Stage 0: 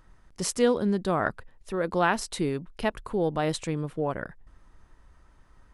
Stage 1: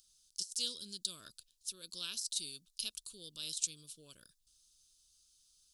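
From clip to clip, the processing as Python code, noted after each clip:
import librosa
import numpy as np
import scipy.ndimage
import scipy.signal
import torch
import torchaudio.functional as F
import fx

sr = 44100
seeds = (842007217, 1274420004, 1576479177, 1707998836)

y = scipy.signal.sosfilt(scipy.signal.cheby2(4, 40, 2100.0, 'highpass', fs=sr, output='sos'), x)
y = fx.over_compress(y, sr, threshold_db=-41.0, ratio=-0.5)
y = F.gain(torch.from_numpy(y), 6.0).numpy()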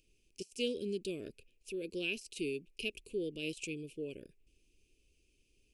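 y = fx.curve_eq(x, sr, hz=(180.0, 410.0, 1300.0, 2500.0, 3700.0), db=(0, 14, -28, 7, -24))
y = F.gain(torch.from_numpy(y), 11.5).numpy()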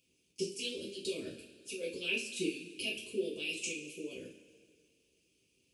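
y = scipy.signal.sosfilt(scipy.signal.butter(4, 90.0, 'highpass', fs=sr, output='sos'), x)
y = fx.hpss(y, sr, part='harmonic', gain_db=-17)
y = fx.rev_double_slope(y, sr, seeds[0], early_s=0.34, late_s=2.0, knee_db=-17, drr_db=-7.0)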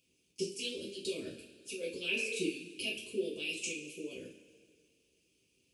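y = fx.spec_repair(x, sr, seeds[1], start_s=2.2, length_s=0.22, low_hz=410.0, high_hz=2700.0, source='both')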